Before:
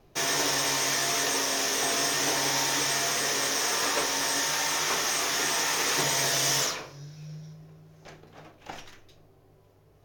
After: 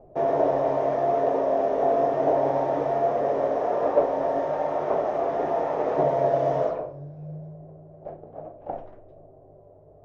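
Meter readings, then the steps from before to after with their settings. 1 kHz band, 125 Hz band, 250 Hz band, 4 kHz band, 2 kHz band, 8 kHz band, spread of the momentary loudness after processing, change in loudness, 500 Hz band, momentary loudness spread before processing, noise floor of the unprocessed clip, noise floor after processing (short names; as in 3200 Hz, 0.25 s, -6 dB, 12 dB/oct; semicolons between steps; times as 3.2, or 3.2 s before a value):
+6.0 dB, +4.0 dB, +5.5 dB, under -25 dB, -14.0 dB, under -35 dB, 17 LU, +0.5 dB, +13.0 dB, 19 LU, -59 dBFS, -51 dBFS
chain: synth low-pass 630 Hz, resonance Q 4.9; gain +3.5 dB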